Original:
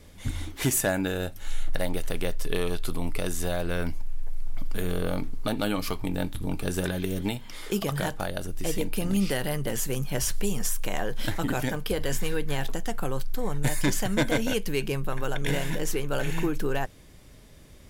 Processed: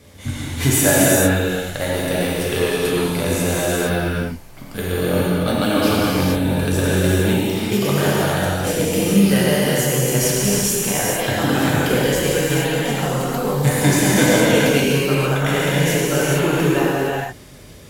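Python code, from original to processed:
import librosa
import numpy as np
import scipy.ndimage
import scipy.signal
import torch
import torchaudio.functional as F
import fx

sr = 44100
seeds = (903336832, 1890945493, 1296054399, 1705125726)

y = scipy.signal.sosfilt(scipy.signal.butter(2, 71.0, 'highpass', fs=sr, output='sos'), x)
y = fx.rev_gated(y, sr, seeds[0], gate_ms=490, shape='flat', drr_db=-7.5)
y = y * 10.0 ** (4.0 / 20.0)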